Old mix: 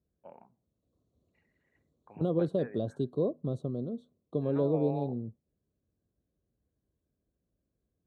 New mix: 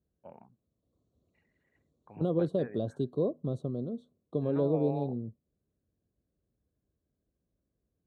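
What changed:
first voice: remove high-pass filter 290 Hz 6 dB per octave
reverb: off

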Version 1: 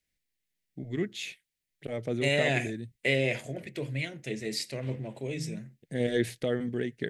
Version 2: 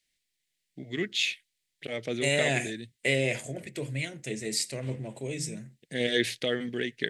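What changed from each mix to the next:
first voice: add meter weighting curve D
second voice: add parametric band 8,200 Hz +11 dB 0.82 octaves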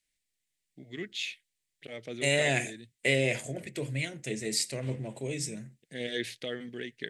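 first voice −7.5 dB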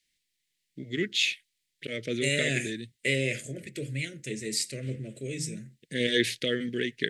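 first voice +9.5 dB
master: add Butterworth band-reject 880 Hz, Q 0.89

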